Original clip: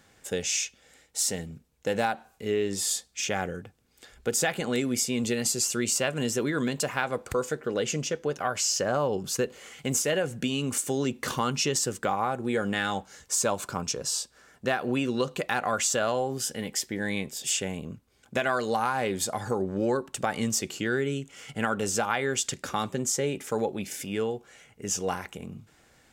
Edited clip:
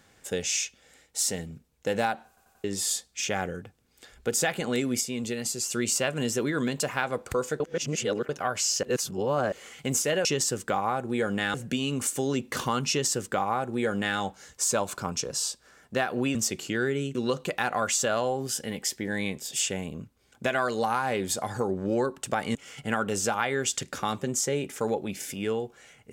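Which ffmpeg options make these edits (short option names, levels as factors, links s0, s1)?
-filter_complex "[0:a]asplit=16[s0][s1][s2][s3][s4][s5][s6][s7][s8][s9][s10][s11][s12][s13][s14][s15];[s0]atrim=end=2.372[s16];[s1]atrim=start=2.278:end=2.372[s17];[s2]atrim=start=2.278:end=2.372[s18];[s3]atrim=start=2.278:end=2.372[s19];[s4]atrim=start=2.638:end=5.012[s20];[s5]atrim=start=5.008:end=5.712,asetpts=PTS-STARTPTS,volume=0.631[s21];[s6]atrim=start=5.708:end=7.602[s22];[s7]atrim=start=7.598:end=8.292,asetpts=PTS-STARTPTS,areverse[s23];[s8]atrim=start=8.288:end=8.832[s24];[s9]atrim=start=8.828:end=9.522,asetpts=PTS-STARTPTS,areverse[s25];[s10]atrim=start=9.518:end=10.252[s26];[s11]atrim=start=11.598:end=12.892[s27];[s12]atrim=start=10.248:end=15.062[s28];[s13]atrim=start=20.458:end=21.262[s29];[s14]atrim=start=15.058:end=20.462[s30];[s15]atrim=start=21.258[s31];[s16][s17]acrossfade=d=0.004:c1=hsin:c2=hsin[s32];[s32][s18]acrossfade=d=0.004:c1=hsin:c2=hsin[s33];[s33][s19]acrossfade=d=0.004:c1=hsin:c2=hsin[s34];[s34][s20]acrossfade=d=0.004:c1=hsin:c2=hsin[s35];[s35][s21]acrossfade=d=0.004:c1=hsin:c2=hsin[s36];[s36][s22]acrossfade=d=0.004:c1=hsin:c2=hsin[s37];[s37][s23]acrossfade=d=0.004:c1=hsin:c2=hsin[s38];[s38][s24]acrossfade=d=0.004:c1=hsin:c2=hsin[s39];[s39][s25]acrossfade=d=0.004:c1=hsin:c2=hsin[s40];[s40][s26]acrossfade=d=0.004:c1=hsin:c2=hsin[s41];[s41][s27]acrossfade=d=0.004:c1=hsin:c2=hsin[s42];[s42][s28]acrossfade=d=0.004:c1=hsin:c2=hsin[s43];[s43][s29]acrossfade=d=0.004:c1=hsin:c2=hsin[s44];[s44][s30]acrossfade=d=0.004:c1=hsin:c2=hsin[s45];[s45][s31]acrossfade=d=0.004:c1=hsin:c2=hsin"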